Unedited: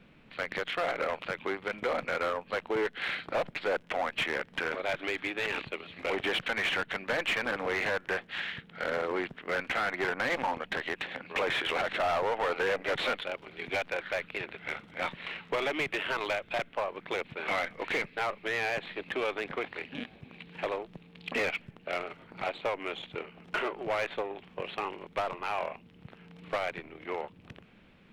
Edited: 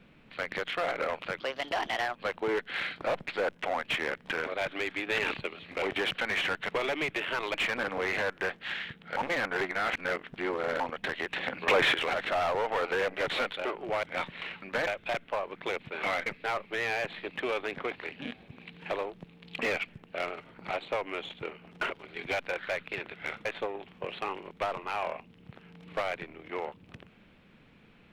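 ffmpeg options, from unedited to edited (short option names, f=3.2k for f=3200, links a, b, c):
-filter_complex "[0:a]asplit=18[a][b][c][d][e][f][g][h][i][j][k][l][m][n][o][p][q][r];[a]atrim=end=1.404[s];[b]atrim=start=1.4:end=2.43,asetpts=PTS-STARTPTS,asetrate=60417,aresample=44100,atrim=end_sample=33155,asetpts=PTS-STARTPTS[t];[c]atrim=start=2.426:end=5.342[u];[d]atrim=start=5.338:end=5.742,asetpts=PTS-STARTPTS,volume=3dB[v];[e]atrim=start=5.738:end=6.972[w];[f]atrim=start=15.468:end=16.322[x];[g]atrim=start=7.218:end=8.852[y];[h]atrim=start=8.848:end=10.482,asetpts=PTS-STARTPTS,areverse[z];[i]atrim=start=10.478:end=11.042[aa];[j]atrim=start=11.038:end=11.622,asetpts=PTS-STARTPTS,volume=6dB[ab];[k]atrim=start=11.618:end=13.332[ac];[l]atrim=start=23.628:end=24.012[ad];[m]atrim=start=14.878:end=15.472[ae];[n]atrim=start=6.968:end=7.222[af];[o]atrim=start=16.318:end=17.712[ag];[p]atrim=start=17.988:end=23.632[ah];[q]atrim=start=13.328:end=14.882[ai];[r]atrim=start=24.008[aj];[s][t]acrossfade=d=0.004:c1=hsin:c2=hsin[ak];[ak][u]acrossfade=d=0.004:c1=hsin:c2=hsin[al];[al][v]acrossfade=d=0.004:c1=hsin:c2=hsin[am];[am][w]acrossfade=d=0.004:c1=hsin:c2=hsin[an];[an][x]acrossfade=d=0.004:c1=hsin:c2=hsin[ao];[ao][y]acrossfade=d=0.004:c1=hsin:c2=hsin[ap];[ap][z]acrossfade=d=0.004:c1=hsin:c2=hsin[aq];[aq][aa]acrossfade=d=0.004:c1=hsin:c2=hsin[ar];[ar][ab]acrossfade=d=0.004:c1=hsin:c2=hsin[as];[as][ac]acrossfade=d=0.004:c1=hsin:c2=hsin[at];[at][ad]acrossfade=d=0.004:c1=hsin:c2=hsin[au];[au][ae]acrossfade=d=0.004:c1=hsin:c2=hsin[av];[av][af]acrossfade=d=0.004:c1=hsin:c2=hsin[aw];[aw][ag]acrossfade=d=0.004:c1=hsin:c2=hsin[ax];[ax][ah]acrossfade=d=0.004:c1=hsin:c2=hsin[ay];[ay][ai]acrossfade=d=0.004:c1=hsin:c2=hsin[az];[az][aj]acrossfade=d=0.004:c1=hsin:c2=hsin"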